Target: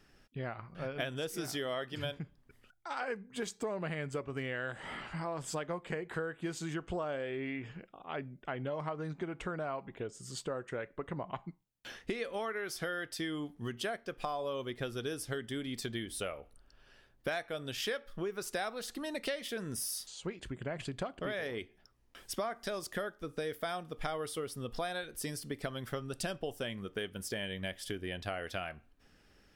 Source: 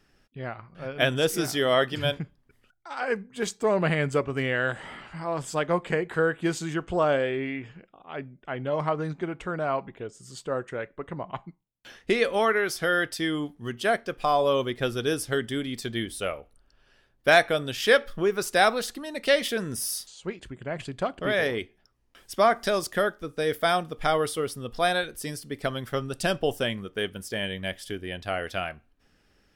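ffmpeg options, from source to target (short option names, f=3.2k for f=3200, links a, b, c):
-af "acompressor=threshold=-35dB:ratio=6"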